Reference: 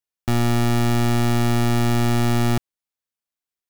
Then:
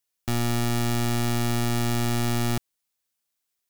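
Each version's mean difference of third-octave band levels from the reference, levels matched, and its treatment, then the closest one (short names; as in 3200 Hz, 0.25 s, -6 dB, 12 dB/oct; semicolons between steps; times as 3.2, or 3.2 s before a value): 2.0 dB: wavefolder -21.5 dBFS; high shelf 3100 Hz +7 dB; gain +4 dB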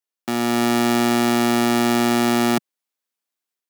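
4.5 dB: HPF 200 Hz 24 dB/oct; AGC gain up to 5 dB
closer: first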